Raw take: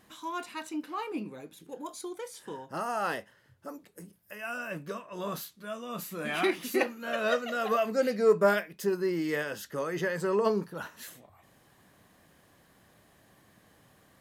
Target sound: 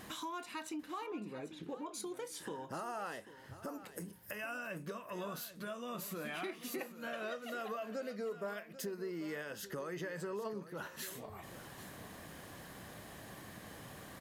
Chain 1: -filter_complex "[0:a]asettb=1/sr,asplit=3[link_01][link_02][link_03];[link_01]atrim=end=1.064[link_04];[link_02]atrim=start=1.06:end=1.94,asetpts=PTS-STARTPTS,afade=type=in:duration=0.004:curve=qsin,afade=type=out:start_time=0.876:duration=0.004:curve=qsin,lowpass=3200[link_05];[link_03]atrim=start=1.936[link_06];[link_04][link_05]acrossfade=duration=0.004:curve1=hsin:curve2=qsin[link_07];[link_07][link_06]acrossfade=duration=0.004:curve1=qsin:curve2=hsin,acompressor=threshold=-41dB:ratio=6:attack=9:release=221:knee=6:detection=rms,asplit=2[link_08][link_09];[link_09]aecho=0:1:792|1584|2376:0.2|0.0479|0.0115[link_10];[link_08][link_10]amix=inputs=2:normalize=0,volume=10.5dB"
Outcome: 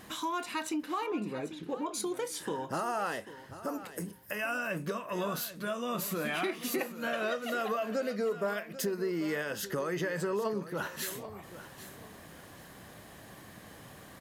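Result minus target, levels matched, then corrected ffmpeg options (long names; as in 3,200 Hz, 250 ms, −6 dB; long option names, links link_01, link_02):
downward compressor: peak gain reduction −9 dB
-filter_complex "[0:a]asettb=1/sr,asplit=3[link_01][link_02][link_03];[link_01]atrim=end=1.064[link_04];[link_02]atrim=start=1.06:end=1.94,asetpts=PTS-STARTPTS,afade=type=in:duration=0.004:curve=qsin,afade=type=out:start_time=0.876:duration=0.004:curve=qsin,lowpass=3200[link_05];[link_03]atrim=start=1.936[link_06];[link_04][link_05]acrossfade=duration=0.004:curve1=hsin:curve2=qsin[link_07];[link_07][link_06]acrossfade=duration=0.004:curve1=qsin:curve2=hsin,acompressor=threshold=-51.5dB:ratio=6:attack=9:release=221:knee=6:detection=rms,asplit=2[link_08][link_09];[link_09]aecho=0:1:792|1584|2376:0.2|0.0479|0.0115[link_10];[link_08][link_10]amix=inputs=2:normalize=0,volume=10.5dB"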